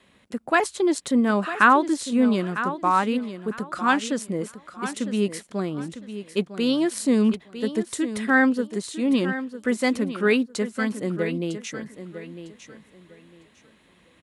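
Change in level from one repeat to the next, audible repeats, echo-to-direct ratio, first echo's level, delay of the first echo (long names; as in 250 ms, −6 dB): −13.0 dB, 2, −11.5 dB, −11.5 dB, 953 ms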